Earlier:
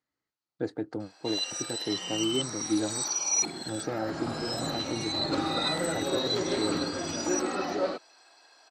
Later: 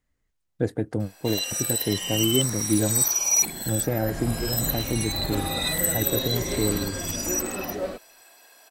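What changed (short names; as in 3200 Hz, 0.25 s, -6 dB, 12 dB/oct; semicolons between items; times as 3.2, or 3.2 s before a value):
speech +7.5 dB; first sound +6.5 dB; master: remove speaker cabinet 170–7100 Hz, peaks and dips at 210 Hz -4 dB, 320 Hz +5 dB, 850 Hz +6 dB, 1300 Hz +7 dB, 4400 Hz +9 dB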